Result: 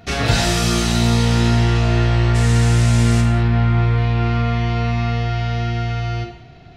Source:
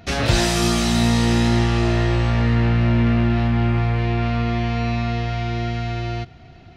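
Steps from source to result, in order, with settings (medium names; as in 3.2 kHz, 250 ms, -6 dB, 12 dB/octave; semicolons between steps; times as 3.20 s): 2.34–3.20 s: band noise 1.6–8.9 kHz -33 dBFS; gated-style reverb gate 240 ms falling, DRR 2.5 dB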